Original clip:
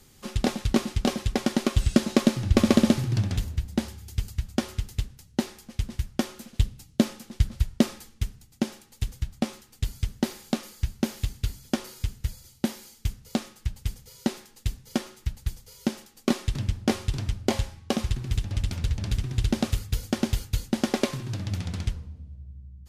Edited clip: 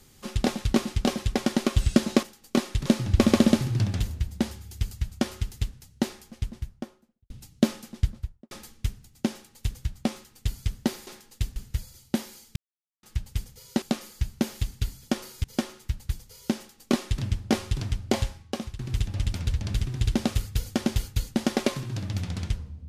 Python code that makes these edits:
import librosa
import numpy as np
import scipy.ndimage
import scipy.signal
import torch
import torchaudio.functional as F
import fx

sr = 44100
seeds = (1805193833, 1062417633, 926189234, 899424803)

y = fx.studio_fade_out(x, sr, start_s=5.43, length_s=1.24)
y = fx.studio_fade_out(y, sr, start_s=7.23, length_s=0.65)
y = fx.edit(y, sr, fx.swap(start_s=10.44, length_s=1.62, other_s=14.32, other_length_s=0.49),
    fx.silence(start_s=13.06, length_s=0.47),
    fx.duplicate(start_s=15.96, length_s=0.63, to_s=2.23),
    fx.fade_out_to(start_s=17.61, length_s=0.55, floor_db=-15.0), tone=tone)